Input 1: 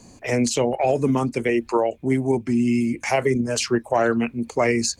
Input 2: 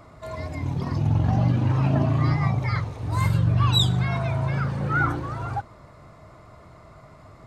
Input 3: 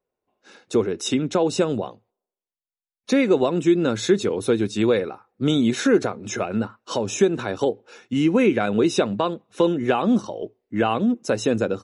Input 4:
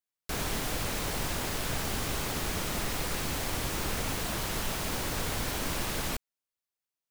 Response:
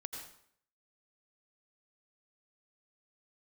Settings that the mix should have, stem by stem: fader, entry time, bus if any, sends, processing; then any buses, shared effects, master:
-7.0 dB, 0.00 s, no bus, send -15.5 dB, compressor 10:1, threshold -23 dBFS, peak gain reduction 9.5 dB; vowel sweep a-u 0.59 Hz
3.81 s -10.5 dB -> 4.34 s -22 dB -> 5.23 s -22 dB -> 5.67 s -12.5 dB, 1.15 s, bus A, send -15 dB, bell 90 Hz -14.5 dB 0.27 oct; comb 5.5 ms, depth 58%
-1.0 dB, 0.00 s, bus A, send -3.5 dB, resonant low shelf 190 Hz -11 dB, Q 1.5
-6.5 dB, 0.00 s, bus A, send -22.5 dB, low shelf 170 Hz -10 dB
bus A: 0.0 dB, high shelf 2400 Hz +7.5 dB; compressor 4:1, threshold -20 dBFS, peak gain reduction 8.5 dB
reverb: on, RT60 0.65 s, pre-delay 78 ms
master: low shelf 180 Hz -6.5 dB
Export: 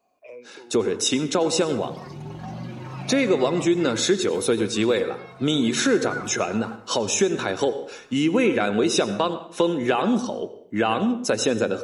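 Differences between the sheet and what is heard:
stem 3: missing resonant low shelf 190 Hz -11 dB, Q 1.5; stem 4: muted

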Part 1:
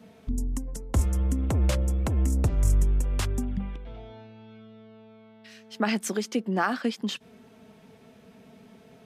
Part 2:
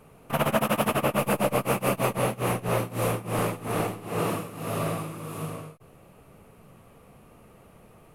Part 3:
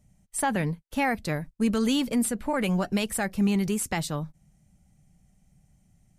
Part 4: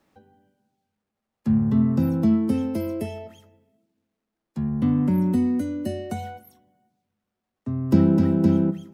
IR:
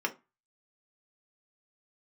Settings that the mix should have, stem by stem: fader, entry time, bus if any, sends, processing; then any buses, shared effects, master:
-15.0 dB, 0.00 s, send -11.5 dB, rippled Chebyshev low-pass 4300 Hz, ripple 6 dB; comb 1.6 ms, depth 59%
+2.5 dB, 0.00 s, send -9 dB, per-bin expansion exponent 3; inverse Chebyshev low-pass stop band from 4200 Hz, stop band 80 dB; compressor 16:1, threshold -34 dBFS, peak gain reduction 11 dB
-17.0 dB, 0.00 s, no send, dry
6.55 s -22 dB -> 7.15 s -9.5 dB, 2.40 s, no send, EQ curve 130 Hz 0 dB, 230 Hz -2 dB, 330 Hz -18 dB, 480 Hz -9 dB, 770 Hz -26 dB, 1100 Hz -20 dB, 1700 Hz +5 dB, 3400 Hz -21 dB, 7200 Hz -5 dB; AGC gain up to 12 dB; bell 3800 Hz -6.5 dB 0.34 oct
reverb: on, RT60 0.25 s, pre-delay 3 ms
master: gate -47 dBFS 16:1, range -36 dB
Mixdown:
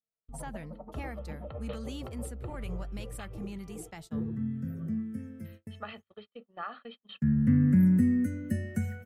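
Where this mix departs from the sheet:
stem 2 +2.5 dB -> -8.0 dB; stem 4: entry 2.40 s -> 2.65 s

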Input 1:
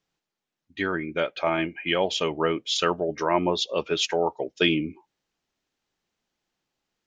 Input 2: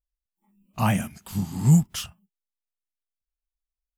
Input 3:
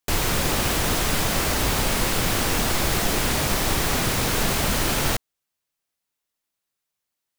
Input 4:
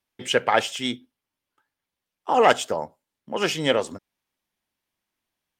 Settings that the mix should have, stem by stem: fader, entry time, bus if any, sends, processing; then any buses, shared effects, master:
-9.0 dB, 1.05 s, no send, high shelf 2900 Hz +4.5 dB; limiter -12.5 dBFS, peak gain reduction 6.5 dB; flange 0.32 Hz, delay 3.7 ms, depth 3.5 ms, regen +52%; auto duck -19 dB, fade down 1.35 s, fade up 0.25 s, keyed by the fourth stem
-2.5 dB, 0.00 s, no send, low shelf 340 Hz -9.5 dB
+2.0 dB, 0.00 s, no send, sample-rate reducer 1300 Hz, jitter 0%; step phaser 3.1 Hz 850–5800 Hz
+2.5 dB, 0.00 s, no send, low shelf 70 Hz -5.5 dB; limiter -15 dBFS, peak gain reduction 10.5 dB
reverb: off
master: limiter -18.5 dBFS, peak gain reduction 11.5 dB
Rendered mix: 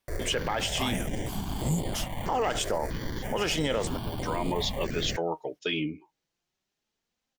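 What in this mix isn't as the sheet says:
stem 1 -9.0 dB -> -1.0 dB; stem 3 +2.0 dB -> -9.0 dB

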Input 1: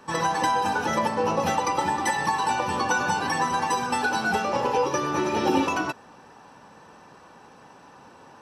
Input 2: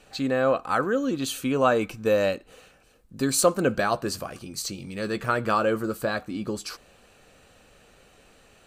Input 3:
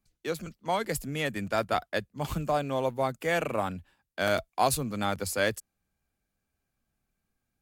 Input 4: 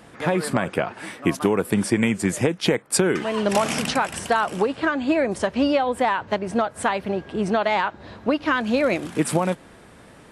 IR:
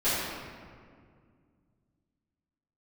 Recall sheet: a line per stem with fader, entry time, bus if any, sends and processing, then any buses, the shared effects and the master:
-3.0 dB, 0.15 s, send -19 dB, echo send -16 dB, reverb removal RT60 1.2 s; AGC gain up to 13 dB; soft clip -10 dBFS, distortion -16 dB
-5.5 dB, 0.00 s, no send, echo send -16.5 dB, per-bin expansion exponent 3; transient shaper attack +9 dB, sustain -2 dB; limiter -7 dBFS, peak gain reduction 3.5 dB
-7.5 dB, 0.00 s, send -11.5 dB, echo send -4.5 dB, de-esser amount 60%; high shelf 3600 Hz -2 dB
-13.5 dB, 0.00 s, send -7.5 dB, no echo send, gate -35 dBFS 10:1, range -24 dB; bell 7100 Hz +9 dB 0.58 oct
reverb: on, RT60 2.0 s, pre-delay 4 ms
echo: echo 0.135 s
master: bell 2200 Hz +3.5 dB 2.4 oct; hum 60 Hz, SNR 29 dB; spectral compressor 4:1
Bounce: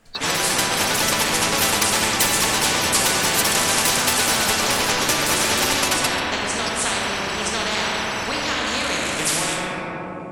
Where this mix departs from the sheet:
stem 2 -5.5 dB -> -13.5 dB; master: missing hum 60 Hz, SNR 29 dB

